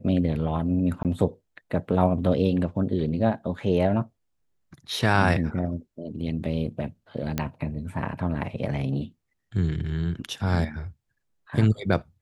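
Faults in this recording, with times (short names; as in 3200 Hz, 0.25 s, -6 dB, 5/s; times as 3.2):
1.03–1.05 gap 18 ms
7.38 pop -11 dBFS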